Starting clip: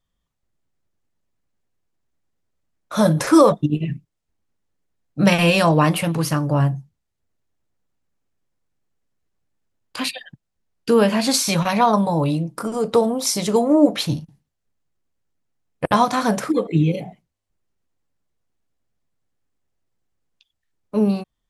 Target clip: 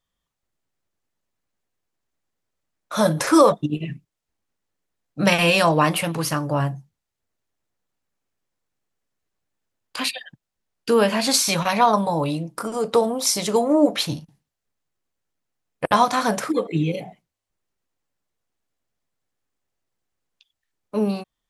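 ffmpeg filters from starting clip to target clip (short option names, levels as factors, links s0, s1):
-af "lowshelf=f=310:g=-8.5,volume=1.12"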